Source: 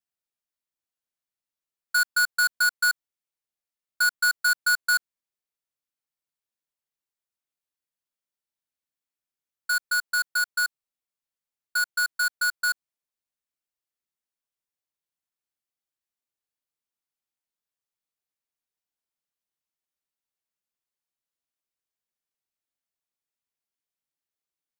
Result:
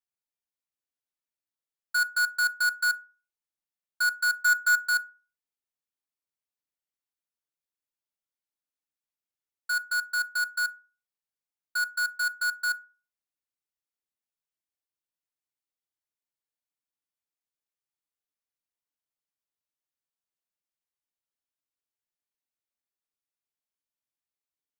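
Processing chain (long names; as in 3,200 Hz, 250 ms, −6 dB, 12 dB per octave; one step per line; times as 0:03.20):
0:04.42–0:04.88: comb filter 2.9 ms, depth 82%
feedback delay network reverb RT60 0.36 s, low-frequency decay 1×, high-frequency decay 0.5×, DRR 11 dB
level −5.5 dB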